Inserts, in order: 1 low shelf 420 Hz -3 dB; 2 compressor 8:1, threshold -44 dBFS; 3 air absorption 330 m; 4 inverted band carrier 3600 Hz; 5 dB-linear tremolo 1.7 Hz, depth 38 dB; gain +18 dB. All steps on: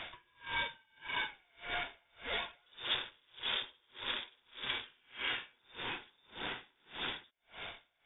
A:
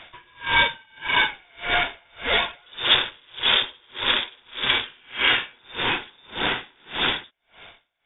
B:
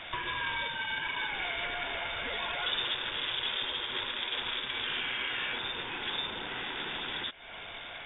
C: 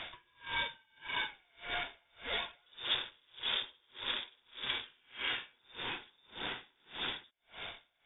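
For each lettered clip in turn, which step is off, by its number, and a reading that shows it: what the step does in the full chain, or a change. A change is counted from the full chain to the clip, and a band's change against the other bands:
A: 2, mean gain reduction 15.0 dB; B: 5, momentary loudness spread change -9 LU; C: 1, 4 kHz band +2.0 dB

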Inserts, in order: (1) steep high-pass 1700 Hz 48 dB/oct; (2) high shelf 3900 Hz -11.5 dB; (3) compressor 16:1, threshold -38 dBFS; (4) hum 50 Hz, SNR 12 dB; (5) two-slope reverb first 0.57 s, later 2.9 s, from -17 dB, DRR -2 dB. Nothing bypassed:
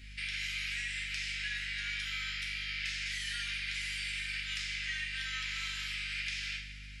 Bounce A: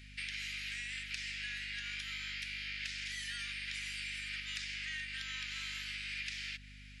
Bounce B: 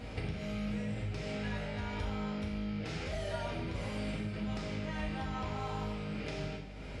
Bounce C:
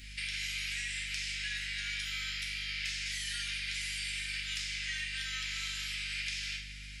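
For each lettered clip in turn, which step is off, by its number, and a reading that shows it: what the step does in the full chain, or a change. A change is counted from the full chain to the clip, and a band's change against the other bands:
5, loudness change -4.0 LU; 1, 250 Hz band +32.5 dB; 2, 8 kHz band +4.5 dB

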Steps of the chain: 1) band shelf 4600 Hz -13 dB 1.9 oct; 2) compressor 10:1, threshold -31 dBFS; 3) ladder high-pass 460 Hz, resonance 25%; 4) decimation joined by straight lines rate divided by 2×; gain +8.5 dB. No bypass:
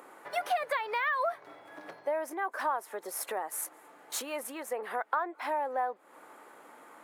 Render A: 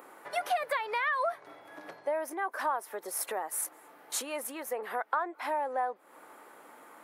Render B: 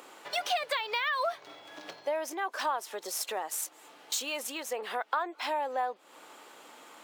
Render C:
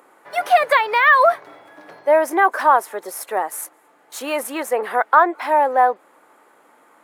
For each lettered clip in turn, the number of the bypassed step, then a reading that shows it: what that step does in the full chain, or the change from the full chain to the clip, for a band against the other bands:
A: 4, 8 kHz band +3.0 dB; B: 1, 4 kHz band +10.0 dB; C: 2, crest factor change -1.5 dB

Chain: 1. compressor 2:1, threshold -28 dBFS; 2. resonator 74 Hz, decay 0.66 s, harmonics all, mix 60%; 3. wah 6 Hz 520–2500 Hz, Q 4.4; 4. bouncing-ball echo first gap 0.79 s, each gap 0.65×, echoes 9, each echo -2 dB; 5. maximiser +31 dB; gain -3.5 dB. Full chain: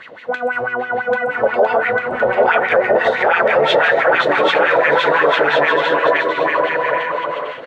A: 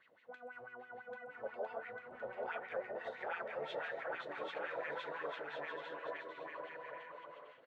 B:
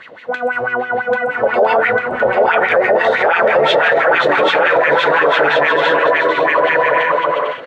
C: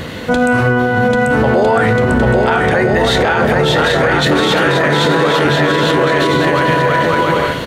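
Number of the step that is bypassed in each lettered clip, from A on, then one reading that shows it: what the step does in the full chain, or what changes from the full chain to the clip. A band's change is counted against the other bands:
5, crest factor change +5.0 dB; 1, mean gain reduction 3.0 dB; 3, 125 Hz band +19.5 dB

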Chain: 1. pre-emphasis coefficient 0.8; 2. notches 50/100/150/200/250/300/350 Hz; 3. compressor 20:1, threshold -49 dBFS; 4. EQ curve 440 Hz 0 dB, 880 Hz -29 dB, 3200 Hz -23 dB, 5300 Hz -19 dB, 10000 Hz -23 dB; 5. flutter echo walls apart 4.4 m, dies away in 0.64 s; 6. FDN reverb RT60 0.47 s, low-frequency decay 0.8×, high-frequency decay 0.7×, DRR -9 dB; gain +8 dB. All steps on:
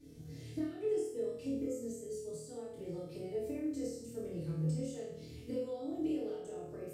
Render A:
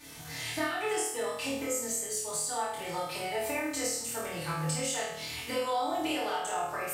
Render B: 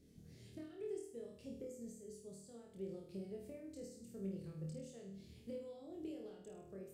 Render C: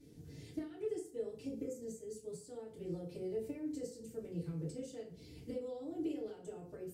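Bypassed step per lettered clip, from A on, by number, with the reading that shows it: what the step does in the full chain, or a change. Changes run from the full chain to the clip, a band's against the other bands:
4, 250 Hz band -21.5 dB; 6, echo-to-direct 13.0 dB to 1.5 dB; 5, echo-to-direct 13.0 dB to 9.0 dB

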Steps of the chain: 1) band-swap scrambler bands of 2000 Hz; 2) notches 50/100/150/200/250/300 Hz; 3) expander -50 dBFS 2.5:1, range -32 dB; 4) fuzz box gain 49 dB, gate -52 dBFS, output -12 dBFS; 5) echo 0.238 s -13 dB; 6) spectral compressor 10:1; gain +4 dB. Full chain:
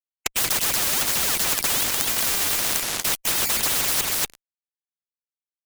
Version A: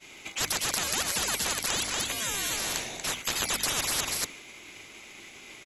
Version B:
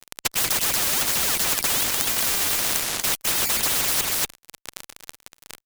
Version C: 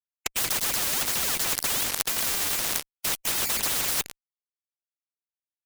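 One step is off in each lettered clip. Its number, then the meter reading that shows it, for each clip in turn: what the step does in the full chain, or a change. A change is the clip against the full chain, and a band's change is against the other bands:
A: 4, distortion -2 dB; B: 3, momentary loudness spread change +4 LU; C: 5, crest factor change +3.5 dB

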